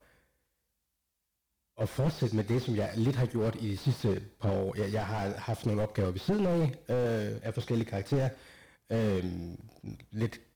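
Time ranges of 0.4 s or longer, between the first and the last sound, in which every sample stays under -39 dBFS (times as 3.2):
8.33–8.91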